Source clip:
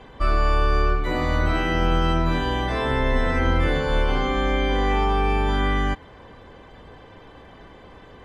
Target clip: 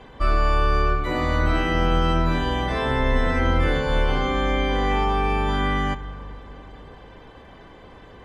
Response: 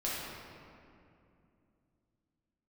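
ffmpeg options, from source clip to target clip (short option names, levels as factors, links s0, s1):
-filter_complex "[0:a]asplit=2[s0][s1];[1:a]atrim=start_sample=2205,asetrate=29988,aresample=44100,adelay=29[s2];[s1][s2]afir=irnorm=-1:irlink=0,volume=0.0631[s3];[s0][s3]amix=inputs=2:normalize=0"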